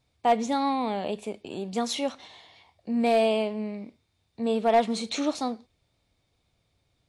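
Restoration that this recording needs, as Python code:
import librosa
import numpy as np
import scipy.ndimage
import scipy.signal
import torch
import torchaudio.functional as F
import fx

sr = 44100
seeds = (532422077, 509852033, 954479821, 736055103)

y = fx.fix_declip(x, sr, threshold_db=-14.0)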